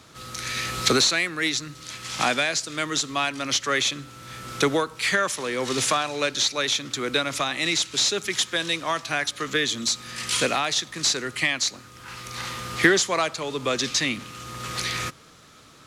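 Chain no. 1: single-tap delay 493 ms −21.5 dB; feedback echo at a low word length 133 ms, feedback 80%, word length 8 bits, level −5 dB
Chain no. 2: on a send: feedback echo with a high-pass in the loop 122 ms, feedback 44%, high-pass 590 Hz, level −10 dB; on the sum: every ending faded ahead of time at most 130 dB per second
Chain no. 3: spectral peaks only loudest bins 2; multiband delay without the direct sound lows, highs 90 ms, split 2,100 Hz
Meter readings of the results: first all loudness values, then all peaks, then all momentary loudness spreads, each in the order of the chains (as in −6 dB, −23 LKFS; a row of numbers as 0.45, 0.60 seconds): −22.0, −24.5, −34.0 LKFS; −6.5, −7.0, −16.0 dBFS; 9, 12, 14 LU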